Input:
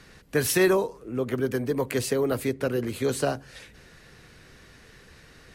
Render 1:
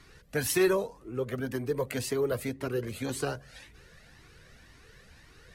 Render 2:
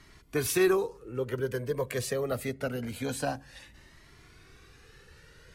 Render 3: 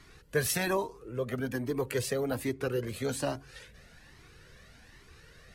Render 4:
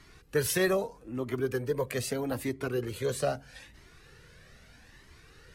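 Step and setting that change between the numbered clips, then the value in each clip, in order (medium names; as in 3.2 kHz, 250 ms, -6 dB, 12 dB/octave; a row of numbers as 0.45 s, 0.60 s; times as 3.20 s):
Shepard-style flanger, rate: 1.9 Hz, 0.25 Hz, 1.2 Hz, 0.79 Hz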